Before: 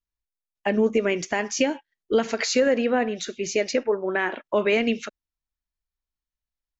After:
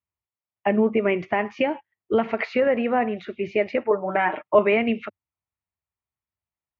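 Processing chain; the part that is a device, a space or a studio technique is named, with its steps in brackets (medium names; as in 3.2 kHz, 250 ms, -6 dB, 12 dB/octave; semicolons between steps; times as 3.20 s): bass cabinet (cabinet simulation 80–2300 Hz, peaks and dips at 99 Hz +7 dB, 160 Hz -4 dB, 270 Hz -9 dB, 480 Hz -7 dB, 1.6 kHz -9 dB); 3.90–4.59 s: comb 6.6 ms, depth 85%; trim +5 dB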